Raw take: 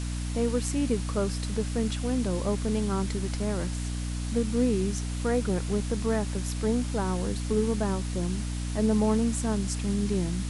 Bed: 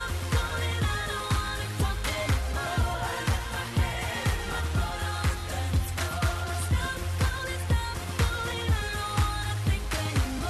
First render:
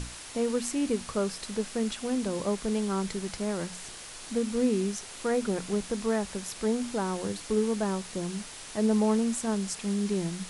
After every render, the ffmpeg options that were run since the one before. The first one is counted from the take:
-af "bandreject=f=60:t=h:w=6,bandreject=f=120:t=h:w=6,bandreject=f=180:t=h:w=6,bandreject=f=240:t=h:w=6,bandreject=f=300:t=h:w=6"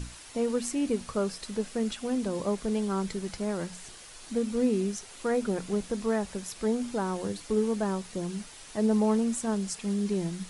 -af "afftdn=nr=6:nf=-44"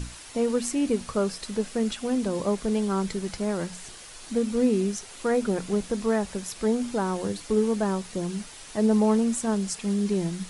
-af "volume=1.5"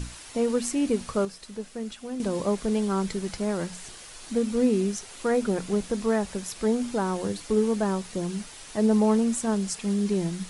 -filter_complex "[0:a]asplit=3[s0][s1][s2];[s0]atrim=end=1.252[s3];[s1]atrim=start=1.248:end=2.202,asetpts=PTS-STARTPTS,volume=0.398[s4];[s2]atrim=start=2.198[s5];[s3][s4]acrossfade=d=0.004:c1=hsin:c2=hsin[s6];[s6][s5]acrossfade=d=0.004:c1=hsin:c2=hsin"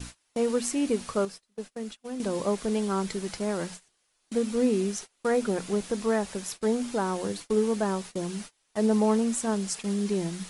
-af "agate=range=0.0398:threshold=0.0141:ratio=16:detection=peak,lowshelf=f=150:g=-8.5"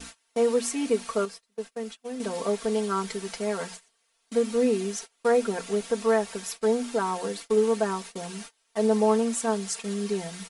-af "bass=f=250:g=-12,treble=f=4000:g=-2,aecho=1:1:4.4:0.91"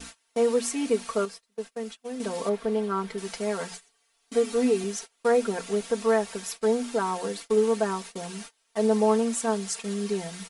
-filter_complex "[0:a]asettb=1/sr,asplit=3[s0][s1][s2];[s0]atrim=end=2.494[s3];[s1]atrim=start=2.49:end=3.18,asetpts=PTS-STARTPTS,afade=t=in:d=0.004:c=qsin,afade=t=out:st=0.686:d=0.004:c=qsin,equalizer=f=7500:t=o:w=1.9:g=-13[s4];[s2]atrim=start=3.176[s5];[s3][s4]acrossfade=d=0.004:c1=hsin:c2=qsin[s6];[s6][s5]acrossfade=d=0.004:c1=qsin:c2=hsin,asettb=1/sr,asplit=3[s7][s8][s9];[s7]atrim=end=3.714[s10];[s8]atrim=start=3.71:end=4.84,asetpts=PTS-STARTPTS,afade=t=in:d=0.004:c=qsin,afade=t=out:st=1.126:d=0.004:c=qsin,aecho=1:1:7:0.65,atrim=end_sample=49833[s11];[s9]atrim=start=4.836[s12];[s10][s11]acrossfade=d=0.004:c1=hsin:c2=qsin[s13];[s13][s12]acrossfade=d=0.004:c1=qsin:c2=hsin"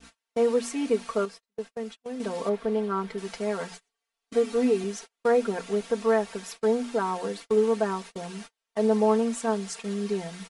-af "agate=range=0.224:threshold=0.00891:ratio=16:detection=peak,lowpass=f=4000:p=1"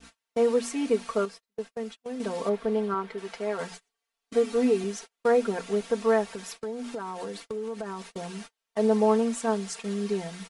-filter_complex "[0:a]asettb=1/sr,asplit=3[s0][s1][s2];[s0]atrim=end=2.944[s3];[s1]atrim=start=2.94:end=3.59,asetpts=PTS-STARTPTS,afade=t=in:d=0.004:c=qsin,afade=t=out:st=0.646:d=0.004:c=qsin,bass=f=250:g=-9,treble=f=4000:g=-7[s4];[s2]atrim=start=3.586[s5];[s3][s4]acrossfade=d=0.004:c1=hsin:c2=qsin[s6];[s6][s5]acrossfade=d=0.004:c1=qsin:c2=hsin,asettb=1/sr,asplit=3[s7][s8][s9];[s7]atrim=end=6.344[s10];[s8]atrim=start=6.34:end=8.12,asetpts=PTS-STARTPTS,afade=t=in:d=0.004:c=qsin,afade=t=out:st=1.776:d=0.004:c=qsin,acompressor=threshold=0.0282:ratio=6:attack=3.2:release=140:knee=1:detection=peak[s11];[s9]atrim=start=8.116[s12];[s10][s11]acrossfade=d=0.004:c1=hsin:c2=qsin[s13];[s13][s12]acrossfade=d=0.004:c1=qsin:c2=hsin"

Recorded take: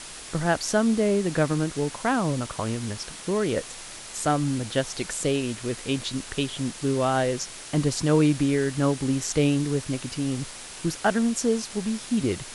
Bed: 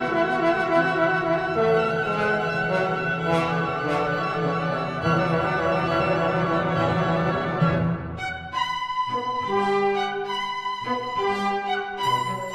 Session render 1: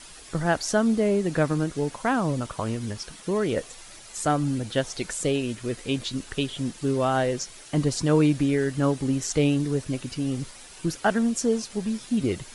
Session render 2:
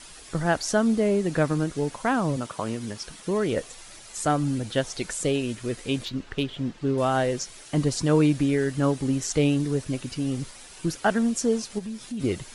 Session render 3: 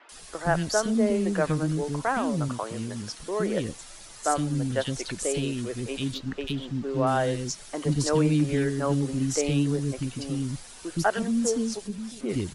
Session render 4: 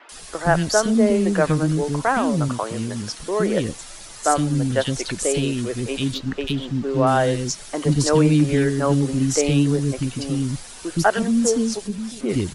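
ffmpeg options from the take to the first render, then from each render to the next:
-af "afftdn=nr=9:nf=-41"
-filter_complex "[0:a]asettb=1/sr,asplit=3[s0][s1][s2];[s0]atrim=end=2.364[s3];[s1]atrim=start=2.36:end=3.01,asetpts=PTS-STARTPTS,afade=t=in:d=0.004:c=qsin,afade=t=out:st=0.646:d=0.004:c=qsin,highpass=140[s4];[s2]atrim=start=3.006[s5];[s3][s4]acrossfade=d=0.004:c1=hsin:c2=qsin[s6];[s6][s5]acrossfade=d=0.004:c1=qsin:c2=hsin,asettb=1/sr,asplit=3[s7][s8][s9];[s7]atrim=end=6.054[s10];[s8]atrim=start=6.05:end=6.98,asetpts=PTS-STARTPTS,afade=t=in:d=0.004:c=qsin,afade=t=out:st=0.926:d=0.004:c=qsin,adynamicsmooth=sensitivity=2:basefreq=3500[s11];[s9]atrim=start=6.976[s12];[s10][s11]acrossfade=d=0.004:c1=hsin:c2=qsin[s13];[s13][s12]acrossfade=d=0.004:c1=qsin:c2=hsin,asplit=3[s14][s15][s16];[s14]afade=t=out:st=11.78:d=0.02[s17];[s15]acompressor=threshold=0.0158:ratio=2:attack=3.2:release=140:knee=1:detection=peak,afade=t=in:st=11.78:d=0.02,afade=t=out:st=12.19:d=0.02[s18];[s16]afade=t=in:st=12.19:d=0.02[s19];[s17][s18][s19]amix=inputs=3:normalize=0"
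-filter_complex "[0:a]acrossover=split=340|2400[s0][s1][s2];[s2]adelay=90[s3];[s0]adelay=120[s4];[s4][s1][s3]amix=inputs=3:normalize=0"
-af "volume=2.11"

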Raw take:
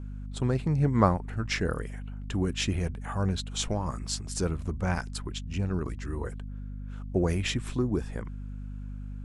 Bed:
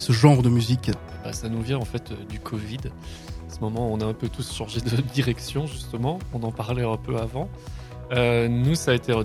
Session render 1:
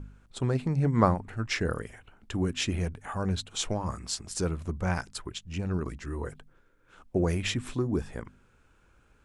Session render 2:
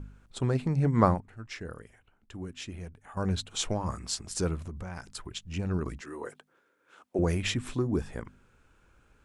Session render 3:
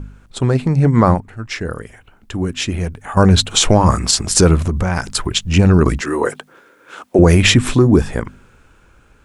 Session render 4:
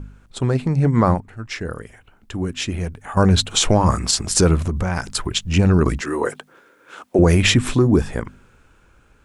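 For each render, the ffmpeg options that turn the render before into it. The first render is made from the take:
-af "bandreject=f=50:t=h:w=4,bandreject=f=100:t=h:w=4,bandreject=f=150:t=h:w=4,bandreject=f=200:t=h:w=4,bandreject=f=250:t=h:w=4"
-filter_complex "[0:a]asettb=1/sr,asplit=3[s0][s1][s2];[s0]atrim=end=4.594[s3];[s1]atrim=start=4.59:end=5.36,asetpts=PTS-STARTPTS,afade=t=in:d=0.004:c=qsin,afade=t=out:st=0.766:d=0.004:c=qsin,acompressor=threshold=0.02:ratio=10:attack=3.2:release=140:knee=1:detection=peak[s4];[s2]atrim=start=5.356[s5];[s3][s4]acrossfade=d=0.004:c1=hsin:c2=qsin[s6];[s6][s5]acrossfade=d=0.004:c1=qsin:c2=hsin,asettb=1/sr,asplit=3[s7][s8][s9];[s7]atrim=end=6.014[s10];[s8]atrim=start=6.01:end=7.19,asetpts=PTS-STARTPTS,afade=t=in:d=0.004:c=qsin,afade=t=out:st=1.176:d=0.004:c=qsin,highpass=320[s11];[s9]atrim=start=7.186[s12];[s10][s11]acrossfade=d=0.004:c1=hsin:c2=qsin[s13];[s13][s12]acrossfade=d=0.004:c1=qsin:c2=hsin,asplit=3[s14][s15][s16];[s14]atrim=end=1.202[s17];[s15]atrim=start=1.198:end=3.172,asetpts=PTS-STARTPTS,volume=0.282[s18];[s16]atrim=start=3.168[s19];[s17][s18]acrossfade=d=0.004:c1=hsin:c2=hsin[s20];[s20][s19]acrossfade=d=0.004:c1=hsin:c2=hsin"
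-af "dynaudnorm=f=240:g=13:m=2.99,alimiter=level_in=3.98:limit=0.891:release=50:level=0:latency=1"
-af "volume=0.631"

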